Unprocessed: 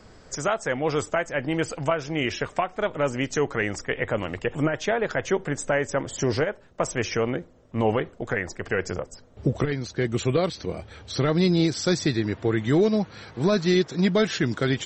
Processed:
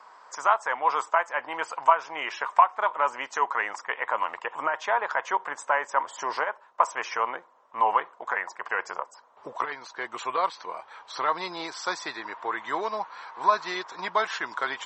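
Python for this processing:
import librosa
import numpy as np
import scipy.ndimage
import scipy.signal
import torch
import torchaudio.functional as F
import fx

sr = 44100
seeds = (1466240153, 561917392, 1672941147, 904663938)

y = fx.highpass_res(x, sr, hz=990.0, q=6.7)
y = fx.high_shelf(y, sr, hz=2500.0, db=-9.5)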